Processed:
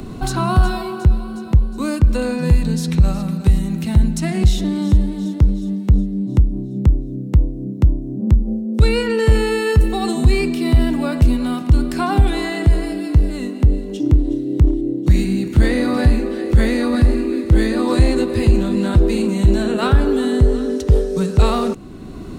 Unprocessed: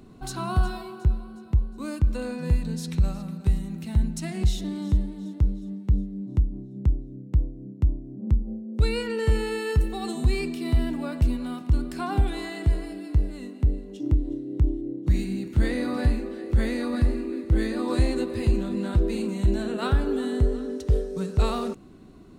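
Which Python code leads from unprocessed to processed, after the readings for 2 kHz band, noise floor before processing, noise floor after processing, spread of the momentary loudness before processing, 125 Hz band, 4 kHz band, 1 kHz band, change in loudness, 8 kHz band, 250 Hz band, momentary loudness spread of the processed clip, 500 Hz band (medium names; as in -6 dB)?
+10.0 dB, -42 dBFS, -28 dBFS, 6 LU, +9.5 dB, +9.5 dB, +10.0 dB, +9.5 dB, +9.5 dB, +10.5 dB, 5 LU, +10.0 dB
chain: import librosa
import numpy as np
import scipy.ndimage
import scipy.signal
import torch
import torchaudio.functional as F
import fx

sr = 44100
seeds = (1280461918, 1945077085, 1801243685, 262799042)

p1 = np.clip(x, -10.0 ** (-22.5 / 20.0), 10.0 ** (-22.5 / 20.0))
p2 = x + (p1 * librosa.db_to_amplitude(-9.0))
p3 = fx.band_squash(p2, sr, depth_pct=40)
y = p3 * librosa.db_to_amplitude(7.5)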